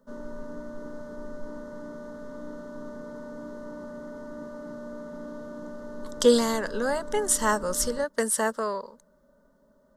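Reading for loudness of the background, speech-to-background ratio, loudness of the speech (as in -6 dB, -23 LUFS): -40.5 LUFS, 15.0 dB, -25.5 LUFS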